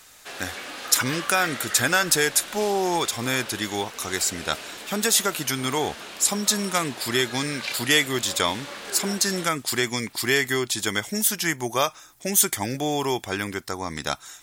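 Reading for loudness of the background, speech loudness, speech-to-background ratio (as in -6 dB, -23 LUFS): -35.5 LUFS, -23.5 LUFS, 12.0 dB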